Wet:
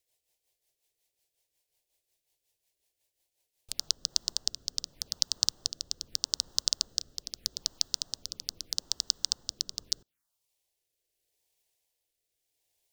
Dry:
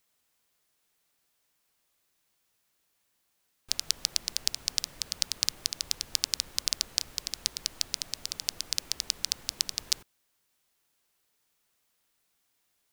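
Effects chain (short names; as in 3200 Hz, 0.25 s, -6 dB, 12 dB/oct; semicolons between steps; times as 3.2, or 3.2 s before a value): rotary speaker horn 5.5 Hz, later 0.8 Hz, at 3.43; envelope phaser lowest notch 210 Hz, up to 2300 Hz, full sweep at -41 dBFS; transient shaper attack +4 dB, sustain -4 dB; gain -1 dB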